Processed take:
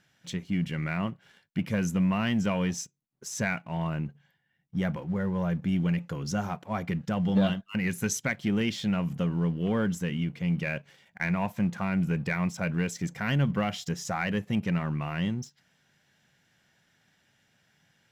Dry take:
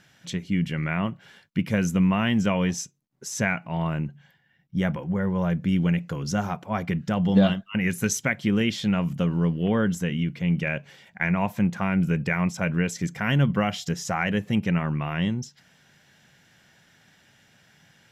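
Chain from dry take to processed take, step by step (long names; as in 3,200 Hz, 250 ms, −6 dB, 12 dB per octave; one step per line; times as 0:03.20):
leveller curve on the samples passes 1
level −7.5 dB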